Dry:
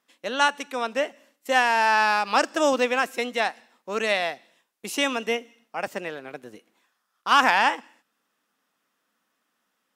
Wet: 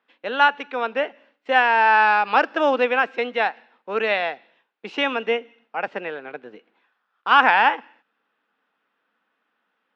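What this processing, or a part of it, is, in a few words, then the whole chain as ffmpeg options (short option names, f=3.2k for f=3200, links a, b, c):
guitar cabinet: -af "highpass=150,highpass=100,equalizer=f=450:t=q:w=4:g=5,equalizer=f=840:t=q:w=4:g=5,equalizer=f=1.5k:t=q:w=4:g=6,equalizer=f=2.5k:t=q:w=4:g=3,lowpass=f=3.6k:w=0.5412,lowpass=f=3.6k:w=1.3066"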